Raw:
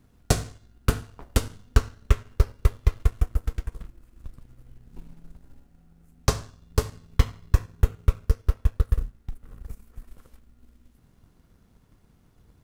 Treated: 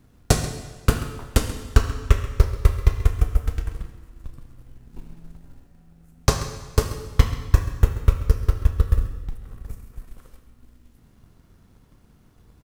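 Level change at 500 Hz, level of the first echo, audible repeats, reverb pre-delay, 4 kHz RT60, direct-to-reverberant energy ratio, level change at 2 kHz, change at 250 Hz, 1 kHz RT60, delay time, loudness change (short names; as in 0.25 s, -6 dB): +4.0 dB, -15.0 dB, 1, 27 ms, 1.4 s, 6.5 dB, +4.5 dB, +4.5 dB, 1.4 s, 0.134 s, +4.0 dB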